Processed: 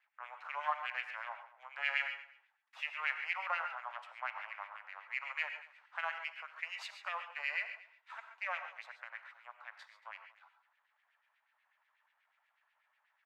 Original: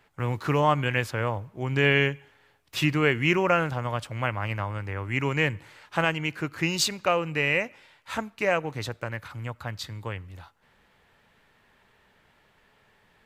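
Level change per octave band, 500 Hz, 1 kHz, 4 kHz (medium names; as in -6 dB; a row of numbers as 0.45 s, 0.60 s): -26.5 dB, -11.5 dB, -15.5 dB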